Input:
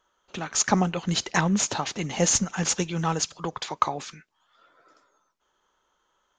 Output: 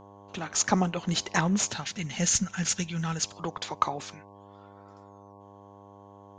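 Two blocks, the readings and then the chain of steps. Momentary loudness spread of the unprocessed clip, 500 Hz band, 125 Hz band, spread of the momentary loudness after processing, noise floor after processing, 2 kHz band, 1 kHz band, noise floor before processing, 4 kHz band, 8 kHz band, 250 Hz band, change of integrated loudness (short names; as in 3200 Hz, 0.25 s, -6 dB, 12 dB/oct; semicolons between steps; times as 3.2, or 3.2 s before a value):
11 LU, -5.0 dB, -2.5 dB, 11 LU, -51 dBFS, -2.5 dB, -3.5 dB, -73 dBFS, -2.5 dB, -2.5 dB, -2.5 dB, -3.0 dB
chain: buzz 100 Hz, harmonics 11, -48 dBFS -1 dB/oct; spectral gain 1.71–3.22, 250–1300 Hz -9 dB; gain -2.5 dB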